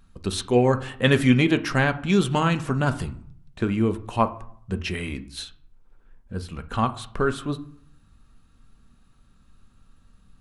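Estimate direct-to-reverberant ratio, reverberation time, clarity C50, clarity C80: 8.5 dB, 0.60 s, 16.0 dB, 20.0 dB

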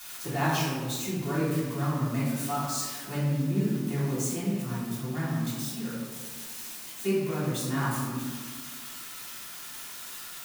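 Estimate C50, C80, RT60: -1.0 dB, 2.0 dB, 1.5 s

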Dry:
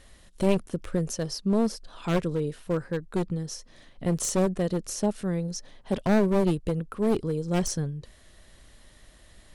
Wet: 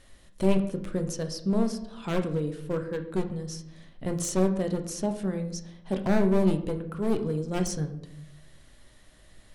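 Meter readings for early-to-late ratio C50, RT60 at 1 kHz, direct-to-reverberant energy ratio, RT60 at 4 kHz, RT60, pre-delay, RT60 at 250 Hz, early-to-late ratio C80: 11.0 dB, 0.70 s, 5.5 dB, 0.50 s, 0.75 s, 3 ms, 1.0 s, 14.0 dB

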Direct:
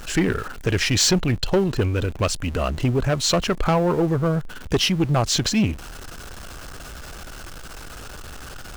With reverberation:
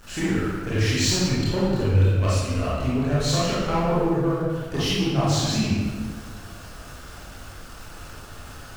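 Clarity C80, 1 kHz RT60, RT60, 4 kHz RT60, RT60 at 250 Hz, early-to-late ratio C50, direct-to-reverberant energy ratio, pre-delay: 0.5 dB, 1.4 s, 1.5 s, 1.0 s, 1.7 s, -3.5 dB, -9.0 dB, 23 ms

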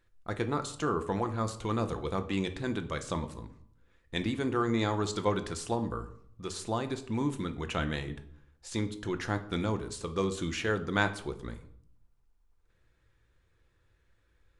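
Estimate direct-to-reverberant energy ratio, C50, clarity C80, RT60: 7.5 dB, 13.5 dB, 17.0 dB, 0.65 s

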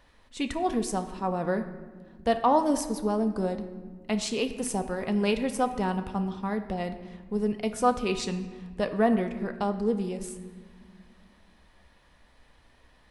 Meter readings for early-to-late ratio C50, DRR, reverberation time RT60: 11.0 dB, 6.5 dB, 1.6 s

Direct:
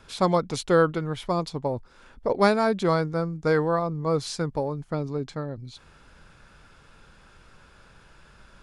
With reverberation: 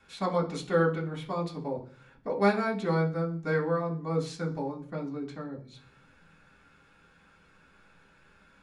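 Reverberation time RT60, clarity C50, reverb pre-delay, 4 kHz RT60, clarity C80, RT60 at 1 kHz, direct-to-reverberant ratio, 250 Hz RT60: 0.50 s, 12.0 dB, 3 ms, 0.55 s, 17.0 dB, 0.40 s, -4.5 dB, 0.80 s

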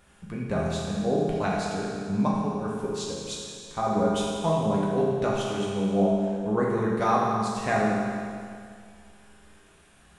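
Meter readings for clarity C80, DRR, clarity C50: 1.0 dB, -5.0 dB, -1.5 dB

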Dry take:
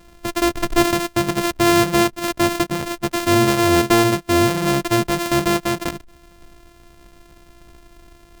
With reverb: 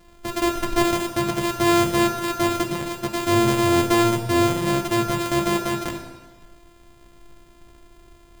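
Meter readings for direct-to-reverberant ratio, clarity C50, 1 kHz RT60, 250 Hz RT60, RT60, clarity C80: 2.0 dB, 5.0 dB, 1.3 s, 1.3 s, 1.3 s, 6.5 dB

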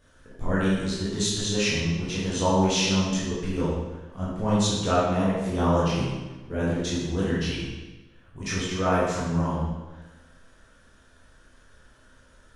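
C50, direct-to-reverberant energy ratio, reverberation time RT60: -1.0 dB, -9.5 dB, 1.2 s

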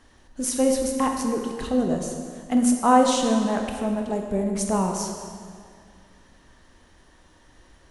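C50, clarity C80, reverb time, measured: 4.0 dB, 5.0 dB, 2.1 s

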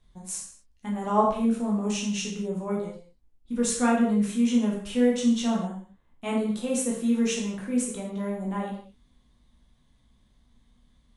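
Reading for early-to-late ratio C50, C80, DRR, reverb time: 3.5 dB, 7.0 dB, -4.0 dB, not exponential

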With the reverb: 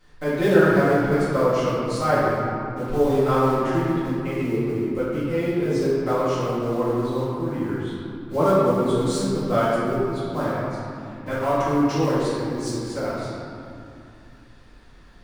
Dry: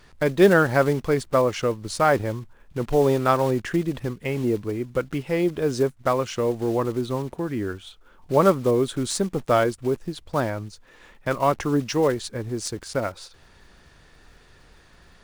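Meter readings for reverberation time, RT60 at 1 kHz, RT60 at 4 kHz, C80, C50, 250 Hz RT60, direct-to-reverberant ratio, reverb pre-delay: 2.6 s, 2.7 s, 1.4 s, -1.5 dB, -3.5 dB, 3.6 s, -12.0 dB, 4 ms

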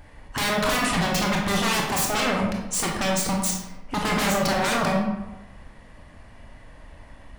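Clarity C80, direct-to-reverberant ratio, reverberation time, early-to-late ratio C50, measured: 5.5 dB, -1.0 dB, 1.0 s, 3.0 dB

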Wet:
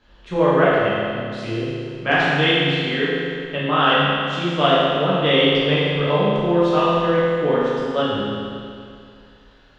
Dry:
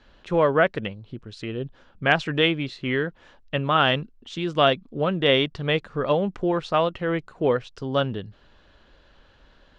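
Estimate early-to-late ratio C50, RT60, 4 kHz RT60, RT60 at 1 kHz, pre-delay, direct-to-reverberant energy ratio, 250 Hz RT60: -3.5 dB, 2.3 s, 2.2 s, 2.3 s, 8 ms, -9.0 dB, 2.3 s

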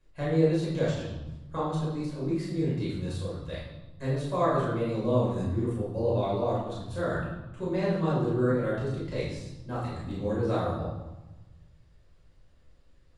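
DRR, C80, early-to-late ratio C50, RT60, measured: -7.5 dB, 4.5 dB, 0.5 dB, 1.1 s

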